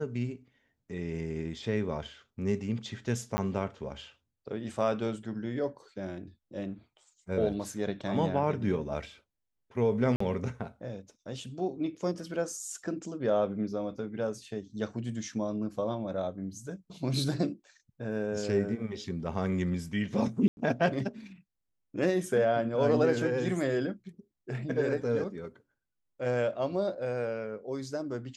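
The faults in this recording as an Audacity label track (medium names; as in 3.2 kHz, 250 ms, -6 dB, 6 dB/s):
3.370000	3.380000	dropout 10 ms
10.160000	10.200000	dropout 44 ms
20.480000	20.570000	dropout 91 ms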